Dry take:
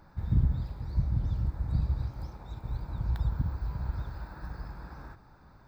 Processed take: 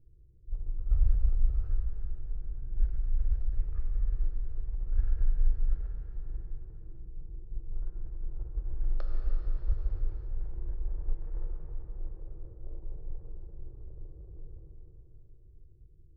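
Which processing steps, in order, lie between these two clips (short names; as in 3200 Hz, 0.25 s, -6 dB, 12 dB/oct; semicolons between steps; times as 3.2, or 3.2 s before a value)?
Wiener smoothing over 25 samples; low-pass opened by the level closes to 790 Hz, open at -24 dBFS; Butterworth band-stop 690 Hz, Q 1.1; non-linear reverb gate 0.46 s falling, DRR 0.5 dB; wide varispeed 0.351×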